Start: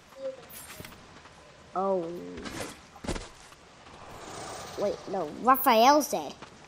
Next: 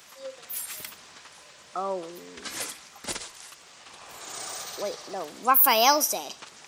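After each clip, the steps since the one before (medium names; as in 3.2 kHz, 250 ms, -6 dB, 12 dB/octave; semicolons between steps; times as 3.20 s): tilt EQ +3.5 dB/octave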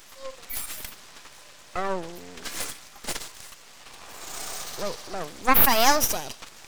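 half-wave rectifier; trim +5.5 dB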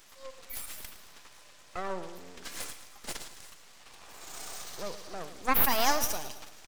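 feedback delay 110 ms, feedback 52%, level -13 dB; trim -7.5 dB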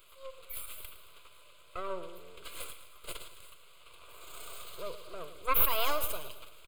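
static phaser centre 1.2 kHz, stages 8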